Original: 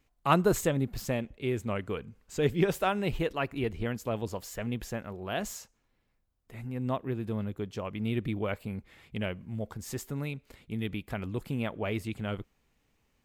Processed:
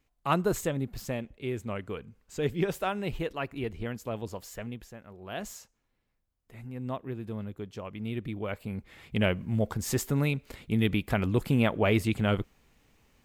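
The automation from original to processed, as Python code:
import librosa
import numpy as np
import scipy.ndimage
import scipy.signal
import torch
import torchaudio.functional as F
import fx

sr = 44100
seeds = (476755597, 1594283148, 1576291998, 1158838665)

y = fx.gain(x, sr, db=fx.line((4.59, -2.5), (4.94, -11.5), (5.39, -3.5), (8.36, -3.5), (9.28, 8.0)))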